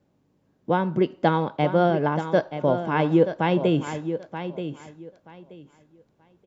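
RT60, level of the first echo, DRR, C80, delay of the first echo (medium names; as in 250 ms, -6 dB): no reverb, -10.0 dB, no reverb, no reverb, 929 ms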